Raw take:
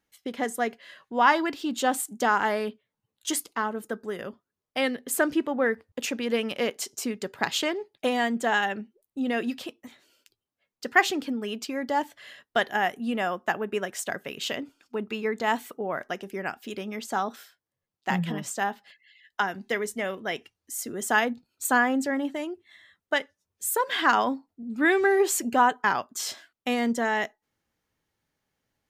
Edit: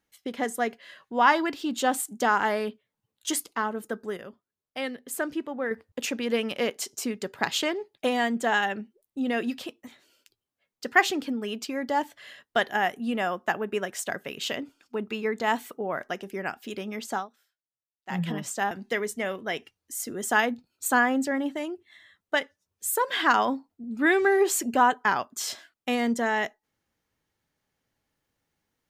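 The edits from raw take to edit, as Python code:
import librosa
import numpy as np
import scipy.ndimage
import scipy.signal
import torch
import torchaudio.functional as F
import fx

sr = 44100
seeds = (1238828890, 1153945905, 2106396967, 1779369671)

y = fx.edit(x, sr, fx.clip_gain(start_s=4.17, length_s=1.54, db=-6.0),
    fx.fade_down_up(start_s=17.13, length_s=1.08, db=-21.0, fade_s=0.15),
    fx.cut(start_s=18.71, length_s=0.79), tone=tone)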